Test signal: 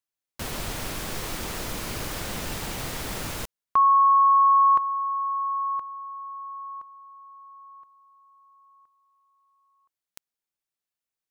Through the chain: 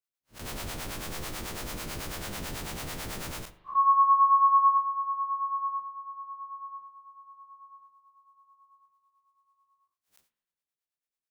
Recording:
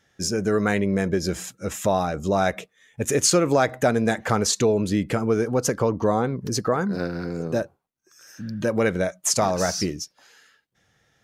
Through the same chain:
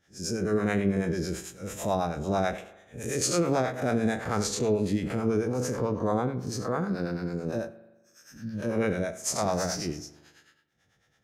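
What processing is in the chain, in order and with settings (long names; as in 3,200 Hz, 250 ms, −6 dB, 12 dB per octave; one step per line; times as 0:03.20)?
spectrum smeared in time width 114 ms
two-band tremolo in antiphase 9.1 Hz, depth 70%, crossover 530 Hz
spring reverb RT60 1.1 s, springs 40 ms, chirp 45 ms, DRR 15 dB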